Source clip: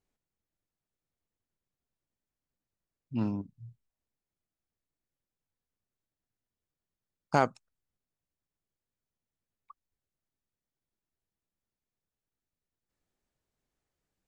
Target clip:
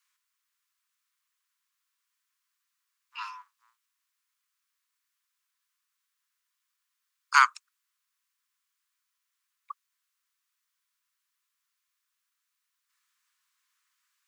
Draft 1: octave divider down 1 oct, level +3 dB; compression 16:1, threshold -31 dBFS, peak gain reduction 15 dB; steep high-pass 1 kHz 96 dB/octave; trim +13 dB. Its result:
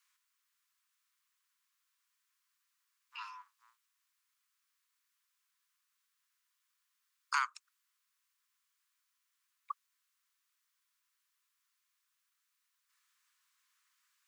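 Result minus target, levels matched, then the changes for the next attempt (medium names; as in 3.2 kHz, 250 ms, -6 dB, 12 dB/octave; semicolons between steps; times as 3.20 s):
compression: peak gain reduction +15 dB
remove: compression 16:1, threshold -31 dBFS, peak gain reduction 15 dB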